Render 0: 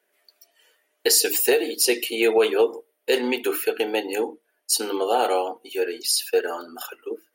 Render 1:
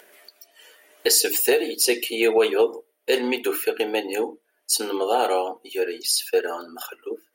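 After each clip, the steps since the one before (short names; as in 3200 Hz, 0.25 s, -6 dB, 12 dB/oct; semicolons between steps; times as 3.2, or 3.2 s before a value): upward compressor, threshold -38 dBFS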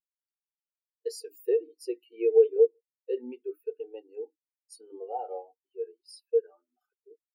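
spectral expander 2.5:1; gain -4 dB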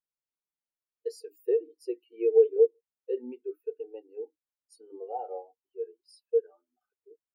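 high shelf 2100 Hz -9 dB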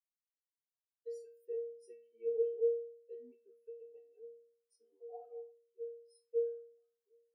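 metallic resonator 230 Hz, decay 0.62 s, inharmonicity 0.008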